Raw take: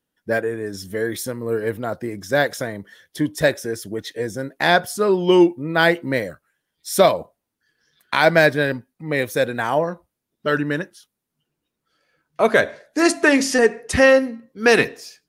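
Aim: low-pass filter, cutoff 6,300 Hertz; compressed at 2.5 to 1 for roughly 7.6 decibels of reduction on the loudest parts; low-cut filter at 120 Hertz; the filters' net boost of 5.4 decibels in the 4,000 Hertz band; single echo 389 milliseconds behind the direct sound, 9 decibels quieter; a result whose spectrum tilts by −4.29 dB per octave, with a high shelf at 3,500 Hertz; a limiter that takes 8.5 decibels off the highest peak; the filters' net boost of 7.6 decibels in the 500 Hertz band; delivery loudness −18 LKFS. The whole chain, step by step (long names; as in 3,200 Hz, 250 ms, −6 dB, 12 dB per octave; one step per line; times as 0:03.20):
high-pass filter 120 Hz
low-pass filter 6,300 Hz
parametric band 500 Hz +9 dB
high-shelf EQ 3,500 Hz +3.5 dB
parametric band 4,000 Hz +5 dB
downward compressor 2.5 to 1, threshold −13 dBFS
brickwall limiter −8 dBFS
single-tap delay 389 ms −9 dB
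level +2 dB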